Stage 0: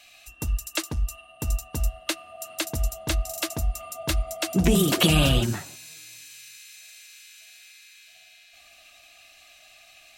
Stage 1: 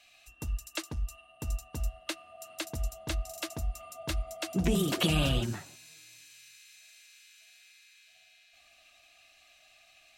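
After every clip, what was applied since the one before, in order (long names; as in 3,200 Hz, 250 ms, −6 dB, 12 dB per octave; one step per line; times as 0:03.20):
high-shelf EQ 9,600 Hz −7 dB
level −7.5 dB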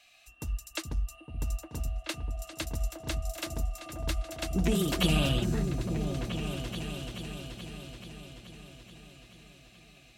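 echo whose low-pass opens from repeat to repeat 430 ms, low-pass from 200 Hz, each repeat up 2 octaves, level −3 dB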